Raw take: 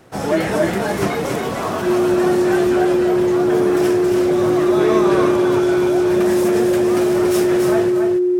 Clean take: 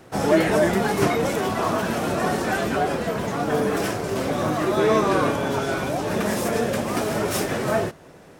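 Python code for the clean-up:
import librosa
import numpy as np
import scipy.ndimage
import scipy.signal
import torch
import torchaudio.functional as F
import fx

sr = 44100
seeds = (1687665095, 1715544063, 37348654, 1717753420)

y = fx.notch(x, sr, hz=360.0, q=30.0)
y = fx.fix_echo_inverse(y, sr, delay_ms=280, level_db=-5.5)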